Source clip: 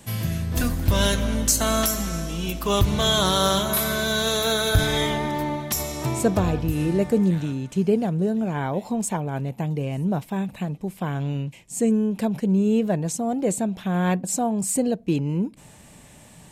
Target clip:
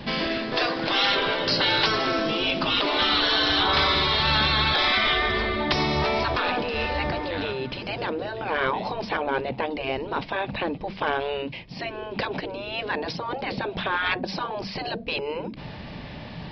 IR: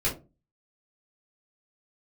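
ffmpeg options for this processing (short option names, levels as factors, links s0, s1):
-af "afftfilt=real='re*lt(hypot(re,im),0.141)':imag='im*lt(hypot(re,im),0.141)':win_size=1024:overlap=0.75,aresample=11025,aeval=exprs='0.119*sin(PI/2*1.41*val(0)/0.119)':c=same,aresample=44100,volume=1.68"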